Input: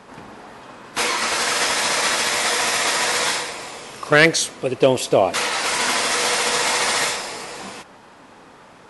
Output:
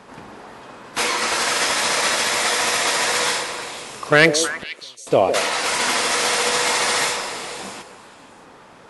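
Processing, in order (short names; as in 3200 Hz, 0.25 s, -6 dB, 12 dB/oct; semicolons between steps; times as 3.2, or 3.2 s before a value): 4.48–5.07 flipped gate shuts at -19 dBFS, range -38 dB; delay with a stepping band-pass 0.157 s, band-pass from 460 Hz, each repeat 1.4 oct, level -6 dB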